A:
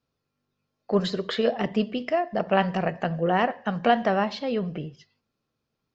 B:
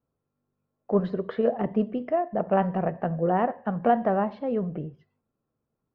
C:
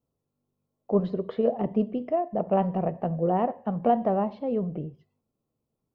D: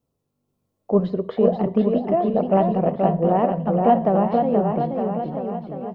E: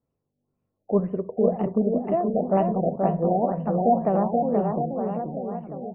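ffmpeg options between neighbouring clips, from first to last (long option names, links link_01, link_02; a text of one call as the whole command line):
ffmpeg -i in.wav -af "lowpass=1100" out.wav
ffmpeg -i in.wav -af "equalizer=frequency=1600:width=2:gain=-12" out.wav
ffmpeg -i in.wav -af "aecho=1:1:480|912|1301|1651|1966:0.631|0.398|0.251|0.158|0.1,volume=5dB" out.wav
ffmpeg -i in.wav -af "afftfilt=real='re*lt(b*sr/1024,790*pow(3100/790,0.5+0.5*sin(2*PI*2*pts/sr)))':imag='im*lt(b*sr/1024,790*pow(3100/790,0.5+0.5*sin(2*PI*2*pts/sr)))':win_size=1024:overlap=0.75,volume=-3.5dB" out.wav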